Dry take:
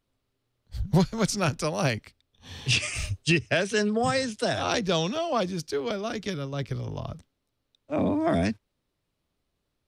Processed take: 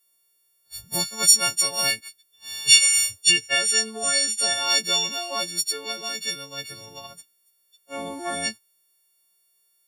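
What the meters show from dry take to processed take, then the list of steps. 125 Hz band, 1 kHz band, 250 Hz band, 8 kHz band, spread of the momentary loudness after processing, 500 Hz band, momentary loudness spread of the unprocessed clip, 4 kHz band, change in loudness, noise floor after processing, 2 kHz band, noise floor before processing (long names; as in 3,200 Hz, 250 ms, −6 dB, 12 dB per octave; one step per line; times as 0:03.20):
−16.5 dB, −1.5 dB, −12.0 dB, +16.5 dB, 19 LU, −7.0 dB, 11 LU, +12.0 dB, +7.0 dB, −67 dBFS, +4.5 dB, −80 dBFS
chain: every partial snapped to a pitch grid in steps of 4 semitones
RIAA equalisation recording
level −5 dB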